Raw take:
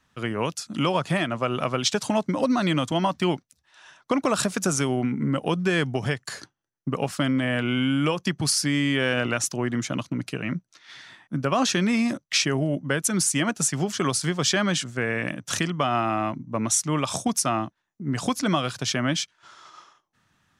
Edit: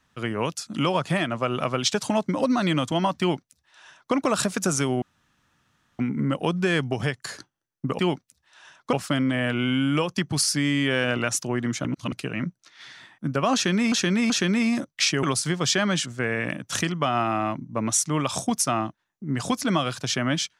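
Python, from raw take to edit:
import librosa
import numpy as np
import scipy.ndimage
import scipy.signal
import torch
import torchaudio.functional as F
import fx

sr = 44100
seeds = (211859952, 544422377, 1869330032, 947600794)

y = fx.edit(x, sr, fx.duplicate(start_s=3.2, length_s=0.94, to_s=7.02),
    fx.insert_room_tone(at_s=5.02, length_s=0.97),
    fx.reverse_span(start_s=9.94, length_s=0.27),
    fx.repeat(start_s=11.63, length_s=0.38, count=3),
    fx.cut(start_s=12.56, length_s=1.45), tone=tone)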